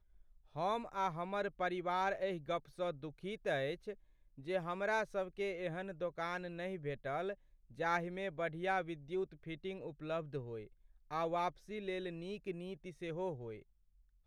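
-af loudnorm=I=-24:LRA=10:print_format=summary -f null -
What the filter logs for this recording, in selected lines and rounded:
Input Integrated:    -40.7 LUFS
Input True Peak:     -21.0 dBTP
Input LRA:             4.4 LU
Input Threshold:     -50.9 LUFS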